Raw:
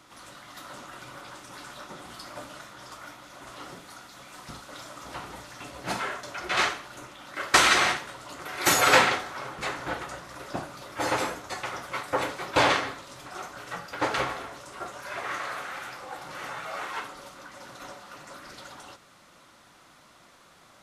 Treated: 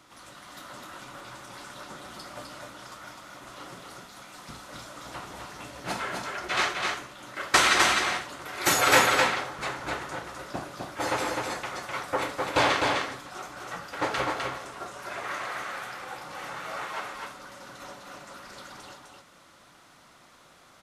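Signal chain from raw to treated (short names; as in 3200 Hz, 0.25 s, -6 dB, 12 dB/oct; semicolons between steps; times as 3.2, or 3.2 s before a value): echo 0.255 s -3.5 dB; gain -1.5 dB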